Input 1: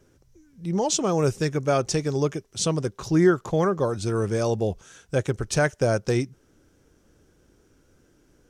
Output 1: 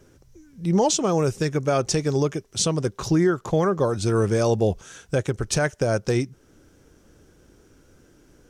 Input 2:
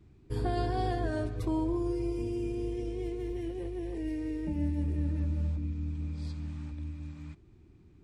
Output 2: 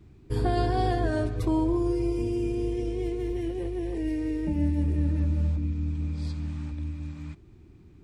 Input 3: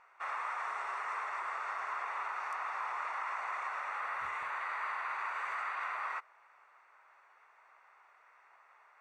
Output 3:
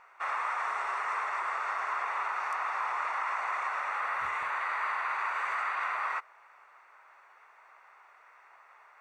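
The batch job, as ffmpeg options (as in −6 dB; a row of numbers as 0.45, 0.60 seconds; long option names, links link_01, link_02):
-af "alimiter=limit=-16.5dB:level=0:latency=1:release=363,volume=5.5dB"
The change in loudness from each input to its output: +1.5, +5.5, +5.5 LU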